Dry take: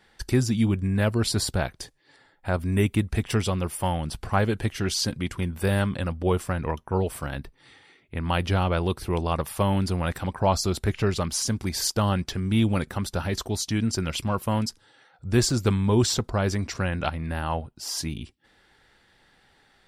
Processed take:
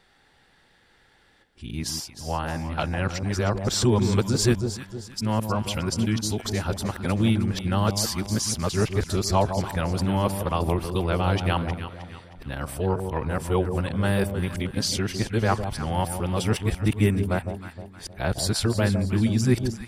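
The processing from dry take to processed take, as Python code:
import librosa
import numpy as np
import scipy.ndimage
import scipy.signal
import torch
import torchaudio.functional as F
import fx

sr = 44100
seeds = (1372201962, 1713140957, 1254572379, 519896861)

y = np.flip(x).copy()
y = fx.echo_alternate(y, sr, ms=156, hz=880.0, feedback_pct=63, wet_db=-7)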